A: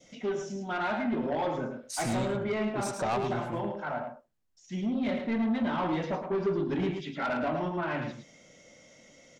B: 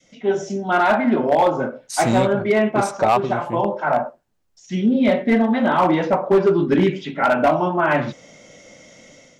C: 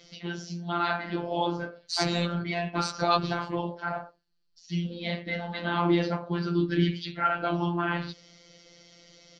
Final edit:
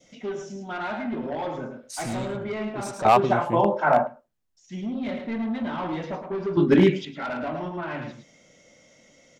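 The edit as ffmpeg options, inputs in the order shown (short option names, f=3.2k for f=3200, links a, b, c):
-filter_complex "[1:a]asplit=2[a][b];[0:a]asplit=3[c][d][e];[c]atrim=end=3.052[f];[a]atrim=start=3.048:end=4.072[g];[d]atrim=start=4.068:end=6.572[h];[b]atrim=start=6.568:end=7.052[i];[e]atrim=start=7.048[j];[f][g]acrossfade=d=0.004:c1=hsin:c2=hsin[k];[k][h]acrossfade=d=0.004:c1=hsin:c2=hsin[l];[l][i]acrossfade=d=0.004:c1=hsin:c2=hsin[m];[m][j]acrossfade=d=0.004:c1=hsin:c2=hsin"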